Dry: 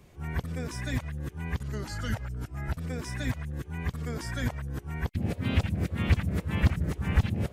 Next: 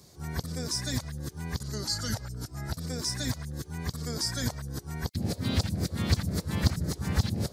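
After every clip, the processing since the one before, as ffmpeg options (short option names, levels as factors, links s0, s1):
-af "highpass=76,highshelf=f=3500:t=q:w=3:g=9"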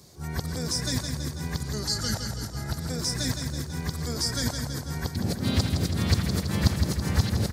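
-af "aecho=1:1:164|328|492|656|820|984|1148|1312:0.473|0.279|0.165|0.0972|0.0573|0.0338|0.02|0.0118,volume=1.33"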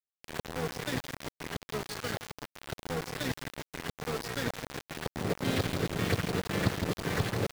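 -af "highpass=f=120:w=0.5412,highpass=f=120:w=1.3066,equalizer=f=140:t=q:w=4:g=-7,equalizer=f=220:t=q:w=4:g=-10,equalizer=f=450:t=q:w=4:g=5,equalizer=f=930:t=q:w=4:g=-6,lowpass=f=3100:w=0.5412,lowpass=f=3100:w=1.3066,aeval=exprs='val(0)*gte(abs(val(0)),0.0251)':c=same,volume=1.19"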